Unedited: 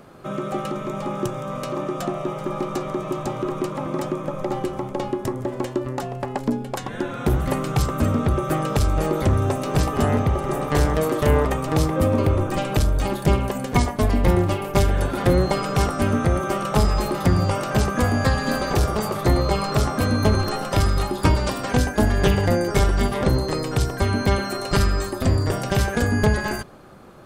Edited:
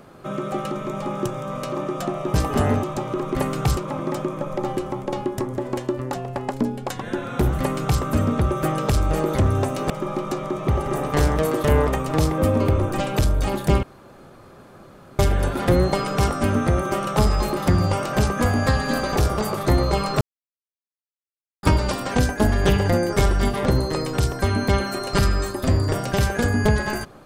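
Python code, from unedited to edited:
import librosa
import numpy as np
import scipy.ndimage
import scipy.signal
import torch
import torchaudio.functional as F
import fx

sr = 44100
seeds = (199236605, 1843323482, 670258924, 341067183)

y = fx.edit(x, sr, fx.swap(start_s=2.34, length_s=0.78, other_s=9.77, other_length_s=0.49),
    fx.duplicate(start_s=7.46, length_s=0.42, to_s=3.64),
    fx.room_tone_fill(start_s=13.41, length_s=1.36),
    fx.silence(start_s=19.79, length_s=1.42), tone=tone)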